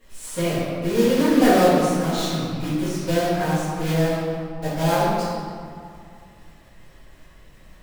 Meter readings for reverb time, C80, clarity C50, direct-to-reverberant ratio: 2.3 s, -0.5 dB, -3.0 dB, -13.5 dB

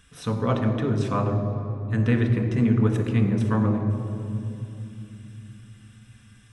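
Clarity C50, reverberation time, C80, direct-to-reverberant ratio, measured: 6.5 dB, 2.9 s, 7.5 dB, 2.5 dB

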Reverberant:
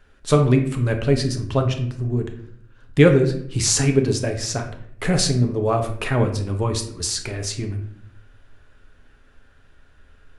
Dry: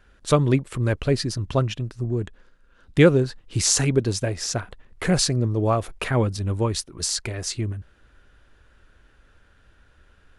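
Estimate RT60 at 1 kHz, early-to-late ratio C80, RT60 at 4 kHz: 0.55 s, 12.5 dB, 0.45 s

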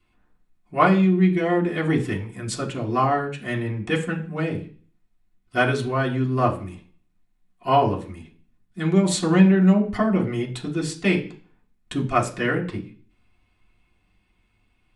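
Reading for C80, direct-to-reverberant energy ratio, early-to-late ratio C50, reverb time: 16.5 dB, -3.0 dB, 12.5 dB, 0.40 s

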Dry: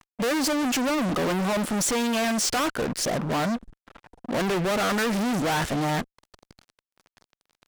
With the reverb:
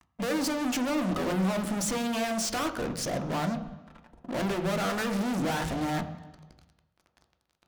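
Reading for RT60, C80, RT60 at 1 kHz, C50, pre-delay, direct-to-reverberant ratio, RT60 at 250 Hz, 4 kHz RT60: 1.1 s, 12.5 dB, 1.1 s, 11.0 dB, 3 ms, 6.0 dB, 1.1 s, 1.1 s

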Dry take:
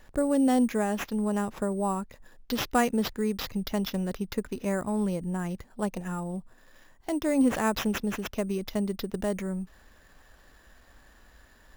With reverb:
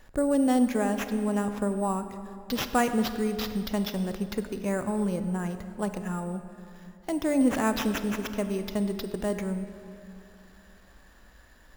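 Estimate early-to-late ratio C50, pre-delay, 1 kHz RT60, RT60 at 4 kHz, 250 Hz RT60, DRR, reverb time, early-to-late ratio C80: 9.5 dB, 29 ms, 2.6 s, 1.8 s, 3.0 s, 9.0 dB, 2.7 s, 10.5 dB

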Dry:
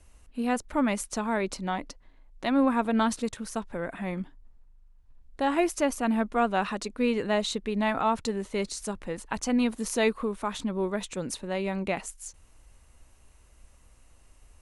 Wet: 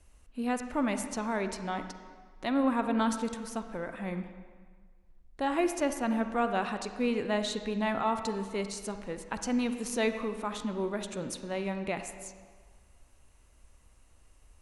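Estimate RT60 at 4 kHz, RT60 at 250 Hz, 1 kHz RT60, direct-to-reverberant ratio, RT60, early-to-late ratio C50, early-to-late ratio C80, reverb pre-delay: 1.3 s, 1.5 s, 1.7 s, 8.0 dB, 1.6 s, 8.5 dB, 10.0 dB, 36 ms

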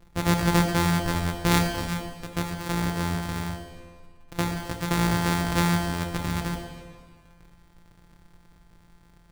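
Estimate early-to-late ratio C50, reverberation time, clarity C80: 5.0 dB, 1.7 s, 6.0 dB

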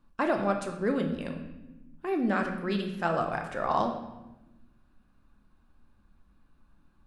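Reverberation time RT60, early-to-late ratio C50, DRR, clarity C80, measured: 1.0 s, 7.0 dB, 3.0 dB, 9.0 dB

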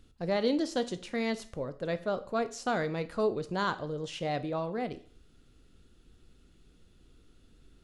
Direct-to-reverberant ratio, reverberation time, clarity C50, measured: 11.5 dB, 0.45 s, 16.0 dB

